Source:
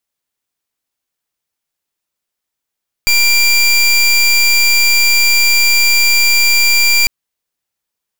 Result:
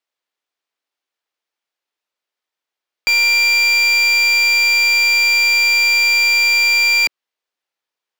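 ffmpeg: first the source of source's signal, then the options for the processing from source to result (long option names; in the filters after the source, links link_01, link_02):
-f lavfi -i "aevalsrc='0.316*(2*lt(mod(2370*t,1),0.23)-1)':duration=4:sample_rate=44100"
-filter_complex "[0:a]acrossover=split=290 5200:gain=0.0891 1 0.2[link_01][link_02][link_03];[link_01][link_02][link_03]amix=inputs=3:normalize=0"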